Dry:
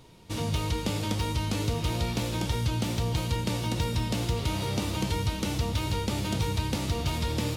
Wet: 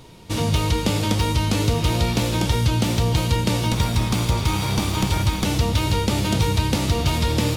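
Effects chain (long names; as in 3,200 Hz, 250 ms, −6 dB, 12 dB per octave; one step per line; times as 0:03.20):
0:03.72–0:05.45: lower of the sound and its delayed copy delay 0.86 ms
level +8.5 dB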